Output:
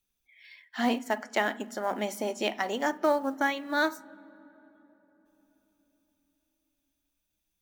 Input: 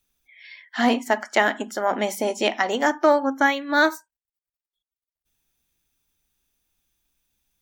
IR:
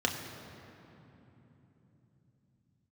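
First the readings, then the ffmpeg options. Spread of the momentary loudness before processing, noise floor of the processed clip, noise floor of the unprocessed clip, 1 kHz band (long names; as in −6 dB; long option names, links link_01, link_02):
6 LU, −81 dBFS, below −85 dBFS, −8.0 dB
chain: -filter_complex "[0:a]acrusher=bits=7:mode=log:mix=0:aa=0.000001,asplit=2[link_01][link_02];[link_02]lowshelf=frequency=210:gain=10[link_03];[1:a]atrim=start_sample=2205,asetrate=33957,aresample=44100[link_04];[link_03][link_04]afir=irnorm=-1:irlink=0,volume=-28.5dB[link_05];[link_01][link_05]amix=inputs=2:normalize=0,volume=-8dB"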